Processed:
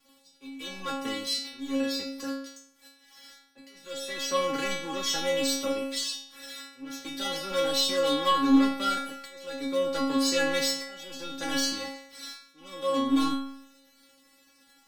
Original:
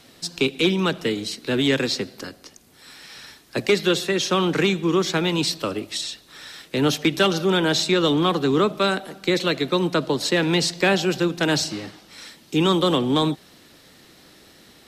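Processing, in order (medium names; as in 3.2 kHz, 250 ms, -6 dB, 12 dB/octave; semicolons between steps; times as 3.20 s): waveshaping leveller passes 3; slow attack 760 ms; inharmonic resonator 270 Hz, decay 0.76 s, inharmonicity 0.002; trim +6 dB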